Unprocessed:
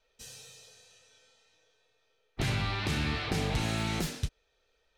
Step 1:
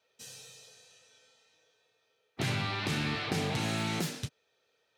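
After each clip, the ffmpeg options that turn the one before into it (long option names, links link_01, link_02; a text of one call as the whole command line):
ffmpeg -i in.wav -af "highpass=frequency=110:width=0.5412,highpass=frequency=110:width=1.3066" out.wav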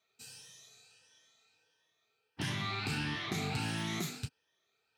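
ffmpeg -i in.wav -af "afftfilt=real='re*pow(10,9/40*sin(2*PI*(1.2*log(max(b,1)*sr/1024/100)/log(2)-(1.5)*(pts-256)/sr)))':imag='im*pow(10,9/40*sin(2*PI*(1.2*log(max(b,1)*sr/1024/100)/log(2)-(1.5)*(pts-256)/sr)))':win_size=1024:overlap=0.75,equalizer=frequency=530:width_type=o:width=0.51:gain=-10.5,volume=-4dB" out.wav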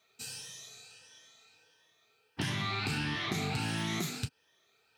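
ffmpeg -i in.wav -af "acompressor=threshold=-42dB:ratio=2.5,volume=8.5dB" out.wav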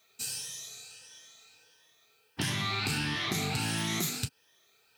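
ffmpeg -i in.wav -af "crystalizer=i=1.5:c=0,volume=1dB" out.wav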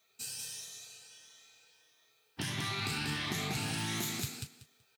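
ffmpeg -i in.wav -af "aecho=1:1:189|378|567:0.668|0.127|0.0241,volume=-5.5dB" out.wav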